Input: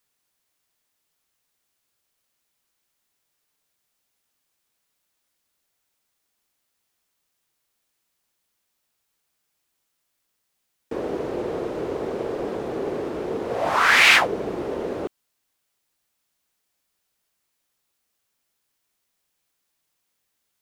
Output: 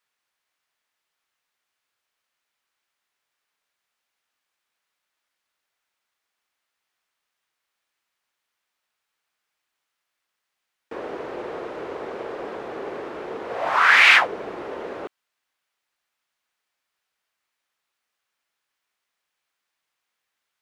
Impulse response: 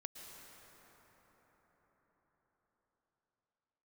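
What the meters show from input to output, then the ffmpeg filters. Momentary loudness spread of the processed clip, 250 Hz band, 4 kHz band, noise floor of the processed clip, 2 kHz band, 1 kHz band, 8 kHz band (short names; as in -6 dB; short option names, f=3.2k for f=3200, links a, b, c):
21 LU, -7.5 dB, -1.0 dB, -82 dBFS, +2.0 dB, +1.0 dB, -7.0 dB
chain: -af "equalizer=f=1.6k:w=0.31:g=15,volume=-12.5dB"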